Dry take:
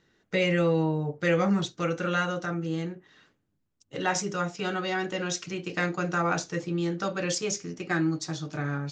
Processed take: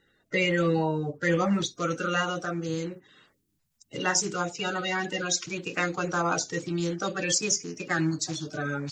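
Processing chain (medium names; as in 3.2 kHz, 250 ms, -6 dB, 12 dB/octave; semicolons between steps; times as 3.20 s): coarse spectral quantiser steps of 30 dB; treble shelf 5.2 kHz +5 dB, from 1.61 s +11.5 dB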